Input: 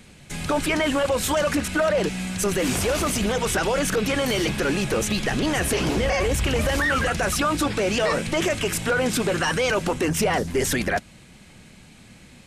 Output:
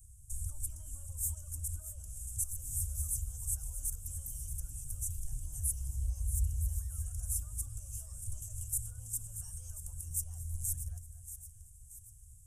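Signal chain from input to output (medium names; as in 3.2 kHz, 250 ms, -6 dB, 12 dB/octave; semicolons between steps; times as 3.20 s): compression, threshold -25 dBFS, peak gain reduction 7.5 dB; inverse Chebyshev band-stop 180–4500 Hz, stop band 40 dB; on a send: two-band feedback delay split 2 kHz, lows 230 ms, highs 631 ms, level -11 dB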